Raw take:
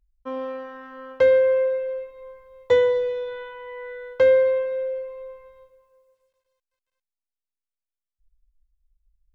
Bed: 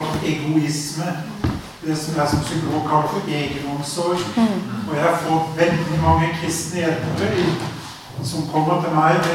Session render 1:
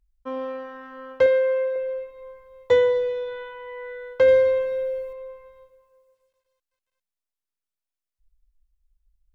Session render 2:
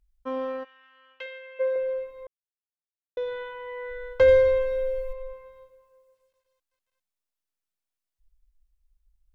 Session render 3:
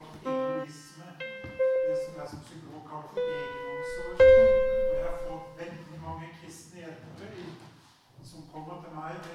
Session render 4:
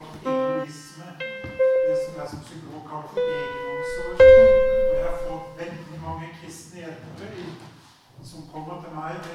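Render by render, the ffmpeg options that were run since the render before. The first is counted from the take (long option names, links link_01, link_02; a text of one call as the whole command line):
ffmpeg -i in.wav -filter_complex "[0:a]asettb=1/sr,asplit=3[link_01][link_02][link_03];[link_01]atrim=end=1.264[link_04];[link_02]atrim=start=1.26:end=1.76,asetpts=PTS-STARTPTS,afade=type=in:duration=0.004:curve=qsin,afade=type=out:start_time=0.496:duration=0.004:curve=qsin,lowshelf=frequency=290:gain=-12[link_05];[link_03]atrim=start=1.756[link_06];[link_04][link_05]acrossfade=duration=0.004:curve1=hsin:curve2=qsin[link_07];[link_07][link_06]acrossfade=duration=0.004:curve1=qsin:curve2=hsin,asettb=1/sr,asplit=3[link_08][link_09][link_10];[link_08]atrim=end=4.284[link_11];[link_09]atrim=start=4.28:end=5.13,asetpts=PTS-STARTPTS,afade=type=in:duration=0.004:curve=qsin,afade=type=out:start_time=0.846:duration=0.004:curve=qsin,bass=frequency=250:gain=8,treble=frequency=4000:gain=12[link_12];[link_10]atrim=start=5.126[link_13];[link_11][link_12]acrossfade=duration=0.004:curve1=hsin:curve2=qsin[link_14];[link_14][link_13]acrossfade=duration=0.004:curve1=qsin:curve2=hsin" out.wav
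ffmpeg -i in.wav -filter_complex "[0:a]asplit=3[link_01][link_02][link_03];[link_01]afade=type=out:start_time=0.63:duration=0.02[link_04];[link_02]bandpass=frequency=2800:width_type=q:width=3.6,afade=type=in:start_time=0.63:duration=0.02,afade=type=out:start_time=1.59:duration=0.02[link_05];[link_03]afade=type=in:start_time=1.59:duration=0.02[link_06];[link_04][link_05][link_06]amix=inputs=3:normalize=0,asplit=3[link_07][link_08][link_09];[link_07]afade=type=out:start_time=3.89:duration=0.02[link_10];[link_08]asubboost=boost=10.5:cutoff=60,afade=type=in:start_time=3.89:duration=0.02,afade=type=out:start_time=5.32:duration=0.02[link_11];[link_09]afade=type=in:start_time=5.32:duration=0.02[link_12];[link_10][link_11][link_12]amix=inputs=3:normalize=0,asplit=3[link_13][link_14][link_15];[link_13]atrim=end=2.27,asetpts=PTS-STARTPTS,afade=type=out:start_time=2.266:duration=0.004:curve=hsin[link_16];[link_14]atrim=start=2.27:end=3.17,asetpts=PTS-STARTPTS,volume=0[link_17];[link_15]atrim=start=3.17,asetpts=PTS-STARTPTS,afade=type=in:duration=0.004:curve=hsin[link_18];[link_16][link_17][link_18]concat=n=3:v=0:a=1" out.wav
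ffmpeg -i in.wav -i bed.wav -filter_complex "[1:a]volume=-24dB[link_01];[0:a][link_01]amix=inputs=2:normalize=0" out.wav
ffmpeg -i in.wav -af "volume=6.5dB,alimiter=limit=-3dB:level=0:latency=1" out.wav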